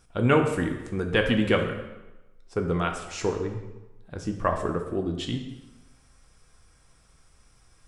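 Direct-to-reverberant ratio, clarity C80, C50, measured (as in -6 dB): 3.5 dB, 9.0 dB, 7.0 dB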